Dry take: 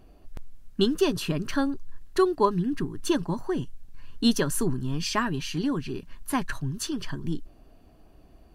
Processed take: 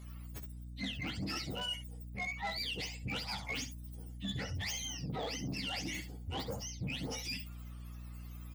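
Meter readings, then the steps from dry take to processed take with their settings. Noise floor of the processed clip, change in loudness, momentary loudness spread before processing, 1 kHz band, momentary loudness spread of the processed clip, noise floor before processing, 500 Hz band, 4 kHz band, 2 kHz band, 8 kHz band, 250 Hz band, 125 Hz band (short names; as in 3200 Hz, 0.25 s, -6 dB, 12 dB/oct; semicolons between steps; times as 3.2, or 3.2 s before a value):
-47 dBFS, -12.0 dB, 10 LU, -13.5 dB, 11 LU, -54 dBFS, -19.0 dB, -4.0 dB, -4.5 dB, -7.5 dB, -17.0 dB, -9.0 dB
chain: spectrum mirrored in octaves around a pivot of 900 Hz; bell 3400 Hz -2.5 dB; reverse; compressor 16:1, threshold -34 dBFS, peak gain reduction 17 dB; reverse; hum 60 Hz, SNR 10 dB; soft clip -34.5 dBFS, distortion -13 dB; on a send: early reflections 15 ms -10 dB, 66 ms -11 dB; on the sum: gain +1 dB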